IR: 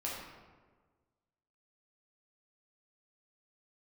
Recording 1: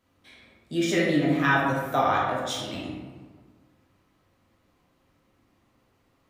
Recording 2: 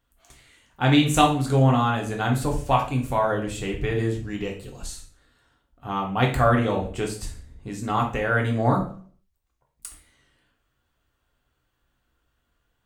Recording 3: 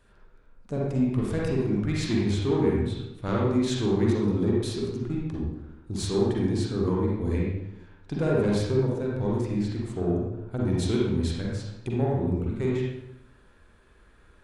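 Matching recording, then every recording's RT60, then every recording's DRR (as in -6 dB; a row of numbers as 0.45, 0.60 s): 1; 1.5, 0.45, 0.85 s; -5.5, 0.0, -4.0 dB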